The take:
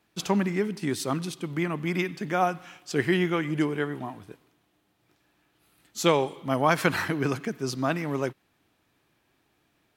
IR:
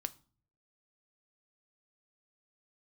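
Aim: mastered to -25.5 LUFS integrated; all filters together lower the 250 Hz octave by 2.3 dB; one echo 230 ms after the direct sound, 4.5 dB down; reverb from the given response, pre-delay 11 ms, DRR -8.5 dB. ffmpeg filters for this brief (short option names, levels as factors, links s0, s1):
-filter_complex "[0:a]equalizer=f=250:t=o:g=-3.5,aecho=1:1:230:0.596,asplit=2[s0][s1];[1:a]atrim=start_sample=2205,adelay=11[s2];[s1][s2]afir=irnorm=-1:irlink=0,volume=2.99[s3];[s0][s3]amix=inputs=2:normalize=0,volume=0.422"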